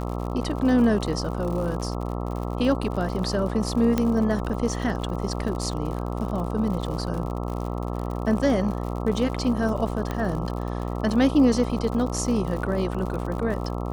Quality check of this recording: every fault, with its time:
buzz 60 Hz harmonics 22 -29 dBFS
crackle 73 per s -32 dBFS
3.98 s: pop -10 dBFS
10.11 s: pop -15 dBFS

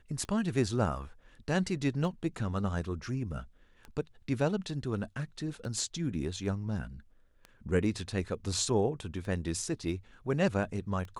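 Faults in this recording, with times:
tick 33 1/3 rpm -30 dBFS

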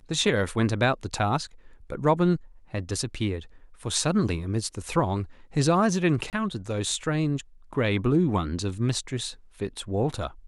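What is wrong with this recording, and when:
6.30–6.33 s: dropout 28 ms

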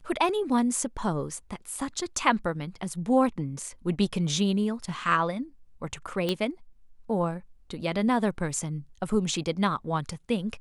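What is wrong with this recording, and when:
6.29 s: pop -14 dBFS

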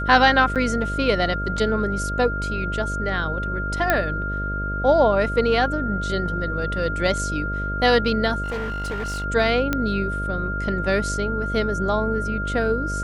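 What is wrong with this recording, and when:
buzz 50 Hz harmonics 13 -28 dBFS
whine 1.4 kHz -27 dBFS
0.55–0.56 s: dropout 7.7 ms
3.90 s: pop -5 dBFS
8.43–9.25 s: clipped -24 dBFS
9.73 s: pop -8 dBFS

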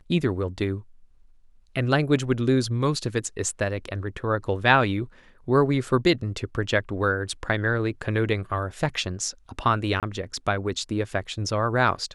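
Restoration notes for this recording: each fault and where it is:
10.00–10.03 s: dropout 27 ms

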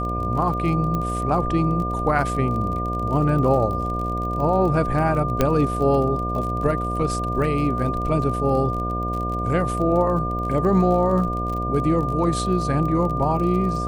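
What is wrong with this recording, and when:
buzz 60 Hz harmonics 12 -27 dBFS
crackle 35 per s -29 dBFS
whine 1.2 kHz -26 dBFS
0.95 s: pop -14 dBFS
5.41 s: pop -5 dBFS

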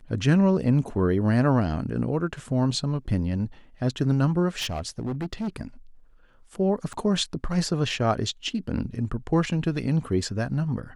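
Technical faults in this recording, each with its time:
4.57–5.49 s: clipped -25.5 dBFS
6.93–6.94 s: dropout 6.8 ms

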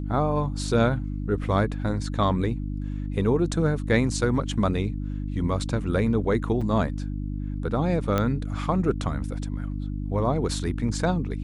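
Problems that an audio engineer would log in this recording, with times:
hum 50 Hz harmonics 6 -30 dBFS
6.61–6.62 s: dropout 5.6 ms
8.18 s: pop -11 dBFS

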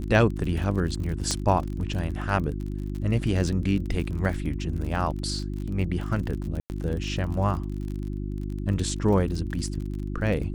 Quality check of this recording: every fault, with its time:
crackle 44 per s -32 dBFS
hum 50 Hz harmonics 7 -31 dBFS
1.31 s: pop -13 dBFS
6.60–6.70 s: dropout 99 ms

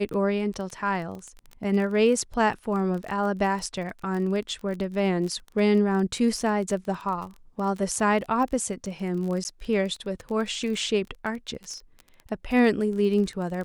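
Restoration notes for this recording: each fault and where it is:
crackle 22 per s -31 dBFS
9.44–9.45 s: dropout 9.8 ms

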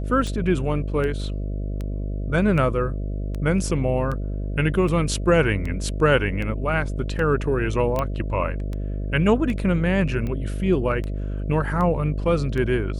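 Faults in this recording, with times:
buzz 50 Hz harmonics 13 -27 dBFS
tick 78 rpm
7.99 s: pop -11 dBFS

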